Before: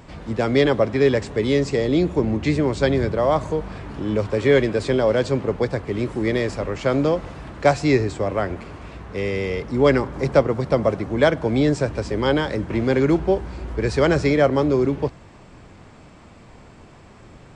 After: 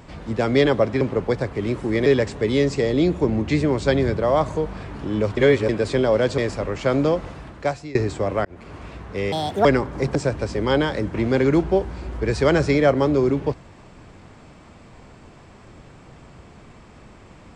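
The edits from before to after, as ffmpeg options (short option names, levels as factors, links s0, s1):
-filter_complex "[0:a]asplit=11[s0][s1][s2][s3][s4][s5][s6][s7][s8][s9][s10];[s0]atrim=end=1.012[s11];[s1]atrim=start=5.328:end=6.382[s12];[s2]atrim=start=1.008:end=4.322[s13];[s3]atrim=start=4.318:end=4.642,asetpts=PTS-STARTPTS,areverse[s14];[s4]atrim=start=4.638:end=5.332[s15];[s5]atrim=start=6.378:end=7.95,asetpts=PTS-STARTPTS,afade=t=out:st=0.902:d=0.67:silence=0.0668344[s16];[s6]atrim=start=7.95:end=8.45,asetpts=PTS-STARTPTS,afade=t=in:d=0.004:c=hsin:silence=0.0668344,afade=t=out:st=0.496:d=0.004:c=hsin[s17];[s7]atrim=start=8.45:end=9.324,asetpts=PTS-STARTPTS,afade=t=in:d=0.32[s18];[s8]atrim=start=9.32:end=9.86,asetpts=PTS-STARTPTS,asetrate=71883,aresample=44100[s19];[s9]atrim=start=9.856:end=10.362[s20];[s10]atrim=start=11.708[s21];[s11][s12]acrossfade=d=0.004:c1=hsin:c2=hsin[s22];[s22][s13]acrossfade=d=0.004:c1=hsin:c2=hsin[s23];[s23][s14]acrossfade=d=0.004:c1=hsin:c2=hsin[s24];[s24][s15]acrossfade=d=0.004:c1=hsin:c2=hsin[s25];[s16][s17][s18]concat=n=3:v=0:a=1[s26];[s25][s26]acrossfade=d=0.004:c1=hsin:c2=hsin[s27];[s27][s19]acrossfade=d=0.004:c1=hsin:c2=hsin[s28];[s28][s20]acrossfade=d=0.004:c1=hsin:c2=hsin[s29];[s29][s21]acrossfade=d=0.004:c1=hsin:c2=hsin"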